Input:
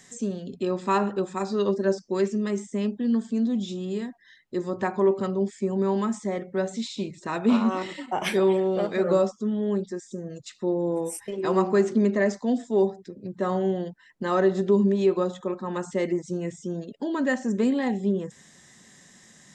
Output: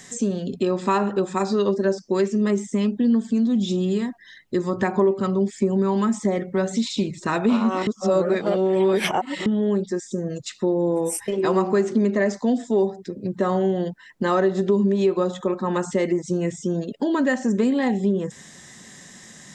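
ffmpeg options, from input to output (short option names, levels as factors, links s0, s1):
-filter_complex "[0:a]asplit=3[s0][s1][s2];[s0]afade=t=out:st=2.4:d=0.02[s3];[s1]aphaser=in_gain=1:out_gain=1:delay=1:decay=0.33:speed=1.6:type=triangular,afade=t=in:st=2.4:d=0.02,afade=t=out:st=7.32:d=0.02[s4];[s2]afade=t=in:st=7.32:d=0.02[s5];[s3][s4][s5]amix=inputs=3:normalize=0,asplit=3[s6][s7][s8];[s6]atrim=end=7.872[s9];[s7]atrim=start=7.868:end=9.462,asetpts=PTS-STARTPTS,areverse[s10];[s8]atrim=start=9.458[s11];[s9][s10]acrossfade=d=0.004:c1=hsin:c2=hsin[s12];[s12][s11]acrossfade=d=0.004:c1=hsin:c2=hsin,acompressor=threshold=0.0398:ratio=2.5,volume=2.66"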